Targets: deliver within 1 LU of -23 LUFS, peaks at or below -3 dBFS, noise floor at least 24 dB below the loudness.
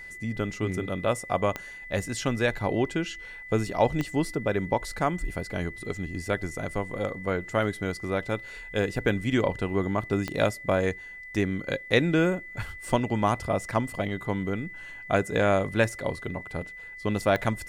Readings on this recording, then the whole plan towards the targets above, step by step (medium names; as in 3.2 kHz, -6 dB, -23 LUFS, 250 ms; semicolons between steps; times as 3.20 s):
clicks found 4; steady tone 2 kHz; tone level -40 dBFS; loudness -28.5 LUFS; peak level -7.5 dBFS; loudness target -23.0 LUFS
-> de-click; band-stop 2 kHz, Q 30; trim +5.5 dB; peak limiter -3 dBFS